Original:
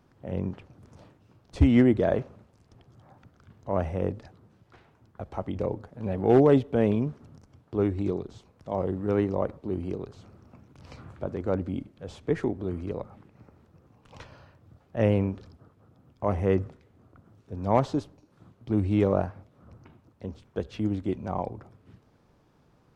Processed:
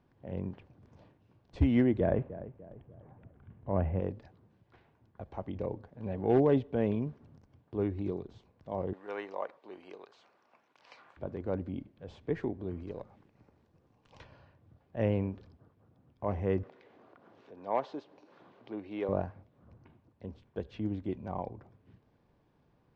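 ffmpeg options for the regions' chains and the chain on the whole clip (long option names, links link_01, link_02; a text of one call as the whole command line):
ffmpeg -i in.wav -filter_complex "[0:a]asettb=1/sr,asplit=3[link_01][link_02][link_03];[link_01]atrim=end=2.004[link_04];[link_02]atrim=start=2:end=4,asetpts=PTS-STARTPTS,afade=type=in:duration=0.004:curve=qsin,afade=type=out:start_time=1.996:duration=0.004:curve=qsin,lowpass=frequency=2900:width=0.5412,lowpass=frequency=2900:width=1.3066,lowshelf=frequency=290:gain=8,asplit=2[link_05][link_06];[link_06]adelay=296,lowpass=frequency=1500:poles=1,volume=-14.5dB,asplit=2[link_07][link_08];[link_08]adelay=296,lowpass=frequency=1500:poles=1,volume=0.43,asplit=2[link_09][link_10];[link_10]adelay=296,lowpass=frequency=1500:poles=1,volume=0.43,asplit=2[link_11][link_12];[link_12]adelay=296,lowpass=frequency=1500:poles=1,volume=0.43[link_13];[link_05][link_07][link_09][link_11][link_13]amix=inputs=5:normalize=0,atrim=end_sample=88200[link_14];[link_03]atrim=start=3.996[link_15];[link_04][link_14]acrossfade=duration=0.004:curve1=hsin:curve2=qsin[link_16];[link_16][link_15]acrossfade=duration=0.004:curve1=qsin:curve2=hsin,asettb=1/sr,asplit=3[link_17][link_18][link_19];[link_17]atrim=end=8.934[link_20];[link_18]atrim=start=8.93:end=11.17,asetpts=PTS-STARTPTS,afade=type=in:duration=0.004:curve=qsin,afade=type=out:start_time=2.236:duration=0.004:curve=qsin,highpass=860,acontrast=30[link_21];[link_19]atrim=start=11.166[link_22];[link_20][link_21]acrossfade=duration=0.004:curve1=hsin:curve2=qsin[link_23];[link_23][link_22]acrossfade=duration=0.004:curve1=qsin:curve2=hsin,asettb=1/sr,asplit=3[link_24][link_25][link_26];[link_24]atrim=end=12.834[link_27];[link_25]atrim=start=12.83:end=14.21,asetpts=PTS-STARTPTS,afade=type=in:duration=0.004:curve=qsin,afade=type=out:start_time=1.376:duration=0.004:curve=qsin,aeval=exprs='if(lt(val(0),0),0.708*val(0),val(0))':channel_layout=same,bass=frequency=250:gain=-3,treble=frequency=4000:gain=9[link_28];[link_26]atrim=start=14.206[link_29];[link_27][link_28]acrossfade=duration=0.004:curve1=hsin:curve2=qsin[link_30];[link_30][link_29]acrossfade=duration=0.004:curve1=qsin:curve2=hsin,asettb=1/sr,asplit=3[link_31][link_32][link_33];[link_31]atrim=end=16.634[link_34];[link_32]atrim=start=16.63:end=19.09,asetpts=PTS-STARTPTS,afade=type=in:duration=0.004:curve=qsin,afade=type=out:start_time=2.456:duration=0.004:curve=qsin,highpass=430,lowpass=5200,acompressor=mode=upward:threshold=-38dB:ratio=2.5:attack=3.2:release=140:knee=2.83:detection=peak[link_35];[link_33]atrim=start=19.086[link_36];[link_34][link_35]acrossfade=duration=0.004:curve1=hsin:curve2=qsin[link_37];[link_37][link_36]acrossfade=duration=0.004:curve1=qsin:curve2=hsin,lowpass=4000,bandreject=frequency=1300:width=8.6,volume=-6.5dB" out.wav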